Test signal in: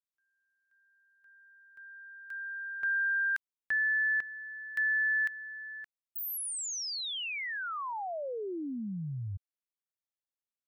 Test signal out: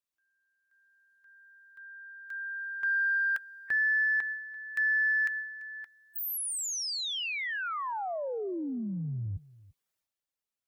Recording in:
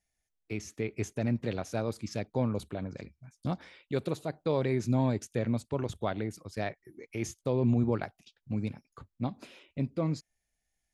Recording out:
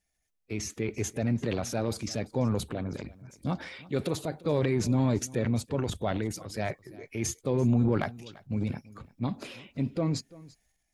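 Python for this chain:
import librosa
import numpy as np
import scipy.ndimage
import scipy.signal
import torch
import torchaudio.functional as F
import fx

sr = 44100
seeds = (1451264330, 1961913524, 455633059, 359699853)

p1 = fx.spec_quant(x, sr, step_db=15)
p2 = fx.transient(p1, sr, attack_db=-1, sustain_db=8)
p3 = 10.0 ** (-21.5 / 20.0) * np.tanh(p2 / 10.0 ** (-21.5 / 20.0))
p4 = p2 + (p3 * librosa.db_to_amplitude(-9.0))
y = p4 + 10.0 ** (-21.0 / 20.0) * np.pad(p4, (int(340 * sr / 1000.0), 0))[:len(p4)]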